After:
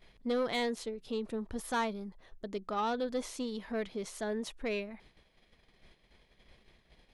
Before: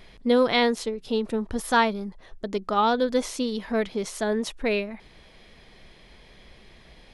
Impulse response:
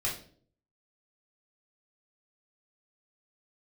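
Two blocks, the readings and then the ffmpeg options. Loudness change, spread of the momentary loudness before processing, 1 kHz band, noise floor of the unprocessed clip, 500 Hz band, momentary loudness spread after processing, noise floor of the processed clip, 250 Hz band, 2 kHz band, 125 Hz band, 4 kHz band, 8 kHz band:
-11.0 dB, 11 LU, -11.5 dB, -52 dBFS, -10.5 dB, 10 LU, -69 dBFS, -10.5 dB, -11.5 dB, n/a, -11.5 dB, -9.0 dB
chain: -af "agate=range=-9dB:threshold=-49dB:ratio=16:detection=peak,equalizer=f=5.4k:w=5.2:g=-2,asoftclip=type=tanh:threshold=-16.5dB,volume=-9dB"

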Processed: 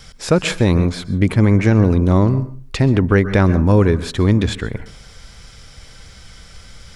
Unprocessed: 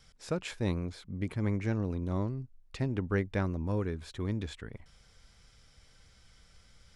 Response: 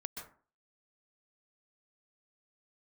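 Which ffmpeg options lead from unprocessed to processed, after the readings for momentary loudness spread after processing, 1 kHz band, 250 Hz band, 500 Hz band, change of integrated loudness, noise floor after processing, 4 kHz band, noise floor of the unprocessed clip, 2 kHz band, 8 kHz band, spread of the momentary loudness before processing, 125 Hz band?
9 LU, +18.0 dB, +18.5 dB, +18.0 dB, +18.5 dB, -42 dBFS, +19.0 dB, -62 dBFS, +17.5 dB, n/a, 11 LU, +18.5 dB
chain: -filter_complex "[0:a]asplit=2[a][b];[1:a]atrim=start_sample=2205[c];[b][c]afir=irnorm=-1:irlink=0,volume=-8.5dB[d];[a][d]amix=inputs=2:normalize=0,alimiter=level_in=19.5dB:limit=-1dB:release=50:level=0:latency=1,volume=-2dB"

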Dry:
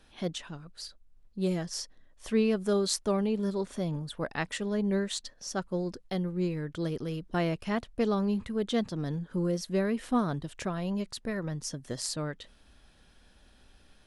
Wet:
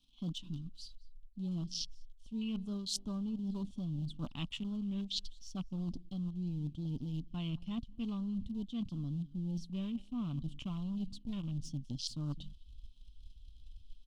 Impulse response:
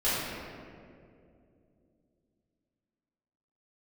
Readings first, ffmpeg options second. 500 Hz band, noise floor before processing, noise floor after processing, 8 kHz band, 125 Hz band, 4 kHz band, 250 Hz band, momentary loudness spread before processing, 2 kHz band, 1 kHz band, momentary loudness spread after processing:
-23.0 dB, -60 dBFS, -57 dBFS, -10.5 dB, -4.0 dB, -4.5 dB, -7.0 dB, 10 LU, -18.5 dB, -18.5 dB, 9 LU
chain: -filter_complex "[0:a]aecho=1:1:6.9:0.31,asplit=2[a][b];[b]acrusher=bits=6:dc=4:mix=0:aa=0.000001,volume=-6dB[c];[a][c]amix=inputs=2:normalize=0,asubboost=boost=2:cutoff=140,acontrast=20,asplit=2[d][e];[e]adelay=204.1,volume=-22dB,highshelf=f=4k:g=-4.59[f];[d][f]amix=inputs=2:normalize=0,afwtdn=0.0282,firequalizer=gain_entry='entry(160,0);entry(230,7);entry(430,-18);entry(1100,-6);entry(1700,-25);entry(3000,11);entry(4700,6);entry(12000,-6)':delay=0.05:min_phase=1,areverse,acompressor=threshold=-30dB:ratio=12,areverse,volume=-5.5dB"

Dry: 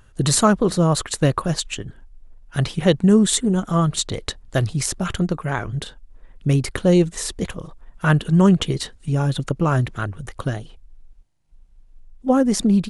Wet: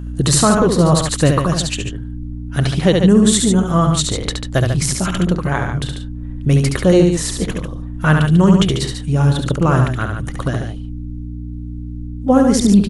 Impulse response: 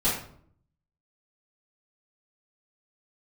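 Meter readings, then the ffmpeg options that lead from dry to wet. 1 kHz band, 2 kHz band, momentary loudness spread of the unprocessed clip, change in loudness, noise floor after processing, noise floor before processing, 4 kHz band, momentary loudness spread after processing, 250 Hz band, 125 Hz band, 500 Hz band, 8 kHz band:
+4.5 dB, +5.0 dB, 14 LU, +5.0 dB, -28 dBFS, -50 dBFS, +5.0 dB, 18 LU, +5.0 dB, +5.5 dB, +5.0 dB, +5.0 dB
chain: -af "aeval=exprs='val(0)+0.0355*(sin(2*PI*60*n/s)+sin(2*PI*2*60*n/s)/2+sin(2*PI*3*60*n/s)/3+sin(2*PI*4*60*n/s)/4+sin(2*PI*5*60*n/s)/5)':c=same,aecho=1:1:69.97|142.9:0.562|0.398,alimiter=level_in=4.5dB:limit=-1dB:release=50:level=0:latency=1,volume=-1dB"

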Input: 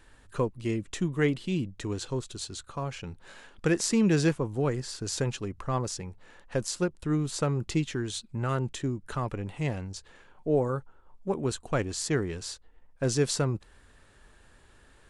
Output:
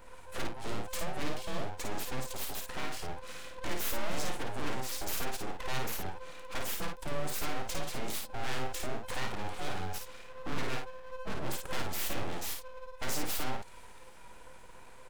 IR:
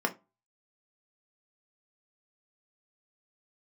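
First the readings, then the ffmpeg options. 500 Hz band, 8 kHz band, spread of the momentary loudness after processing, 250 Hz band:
-10.0 dB, -4.5 dB, 11 LU, -13.5 dB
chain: -filter_complex "[0:a]afftfilt=real='real(if(between(b,1,1008),(2*floor((b-1)/24)+1)*24-b,b),0)':imag='imag(if(between(b,1,1008),(2*floor((b-1)/24)+1)*24-b,b),0)*if(between(b,1,1008),-1,1)':win_size=2048:overlap=0.75,equalizer=f=3.5k:w=0.86:g=-6,asplit=2[a][b];[b]acompressor=threshold=-37dB:ratio=16,volume=-2.5dB[c];[a][c]amix=inputs=2:normalize=0,aeval=exprs='0.224*(cos(1*acos(clip(val(0)/0.224,-1,1)))-cos(1*PI/2))+0.0126*(cos(2*acos(clip(val(0)/0.224,-1,1)))-cos(2*PI/2))+0.00158*(cos(3*acos(clip(val(0)/0.224,-1,1)))-cos(3*PI/2))+0.0126*(cos(8*acos(clip(val(0)/0.224,-1,1)))-cos(8*PI/2))':c=same,aeval=exprs='abs(val(0))':c=same,aeval=exprs='(tanh(17.8*val(0)+0.25)-tanh(0.25))/17.8':c=same,aecho=1:1:31|54:0.178|0.596,adynamicequalizer=threshold=0.00158:dfrequency=2000:dqfactor=0.7:tfrequency=2000:tqfactor=0.7:attack=5:release=100:ratio=0.375:range=2.5:mode=boostabove:tftype=highshelf"

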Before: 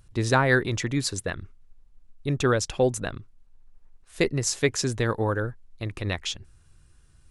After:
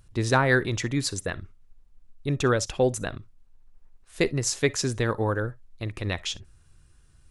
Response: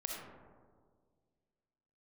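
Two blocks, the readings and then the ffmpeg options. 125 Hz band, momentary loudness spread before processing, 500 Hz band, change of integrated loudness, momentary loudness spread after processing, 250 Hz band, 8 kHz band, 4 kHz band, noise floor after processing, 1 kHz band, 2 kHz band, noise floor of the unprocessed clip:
-0.5 dB, 13 LU, -0.5 dB, -0.5 dB, 13 LU, -0.5 dB, -0.5 dB, -0.5 dB, -58 dBFS, -0.5 dB, -0.5 dB, -58 dBFS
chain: -filter_complex "[0:a]asplit=2[a][b];[1:a]atrim=start_sample=2205,atrim=end_sample=3087[c];[b][c]afir=irnorm=-1:irlink=0,volume=-11dB[d];[a][d]amix=inputs=2:normalize=0,volume=-2dB"

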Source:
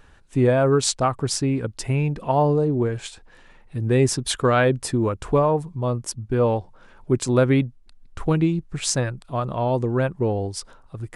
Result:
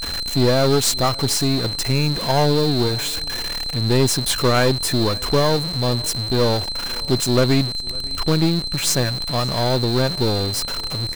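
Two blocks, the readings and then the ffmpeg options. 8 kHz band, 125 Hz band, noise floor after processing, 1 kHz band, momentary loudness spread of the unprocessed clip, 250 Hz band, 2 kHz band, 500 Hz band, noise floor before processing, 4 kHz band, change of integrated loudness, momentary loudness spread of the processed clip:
+5.0 dB, +2.0 dB, -29 dBFS, +1.0 dB, 10 LU, +2.0 dB, +3.5 dB, +1.0 dB, -51 dBFS, +13.5 dB, +3.0 dB, 6 LU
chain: -af "aeval=exprs='val(0)+0.5*0.0631*sgn(val(0))':c=same,aeval=exprs='val(0)+0.0562*sin(2*PI*4100*n/s)':c=same,aeval=exprs='0.75*(cos(1*acos(clip(val(0)/0.75,-1,1)))-cos(1*PI/2))+0.0668*(cos(8*acos(clip(val(0)/0.75,-1,1)))-cos(8*PI/2))':c=same,highshelf=f=9.6k:g=5,aecho=1:1:553|1106:0.0668|0.0154,volume=-1dB"

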